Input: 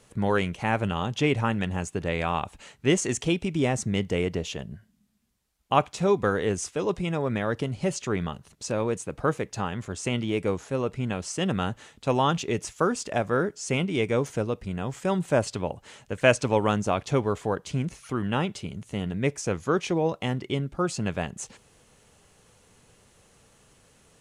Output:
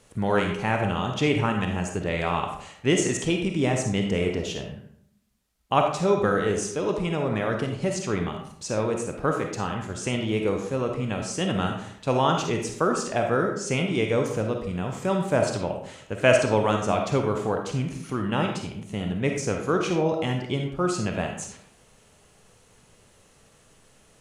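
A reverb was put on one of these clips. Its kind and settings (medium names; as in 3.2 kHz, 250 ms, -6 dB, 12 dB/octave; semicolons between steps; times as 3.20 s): algorithmic reverb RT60 0.66 s, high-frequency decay 0.65×, pre-delay 10 ms, DRR 2.5 dB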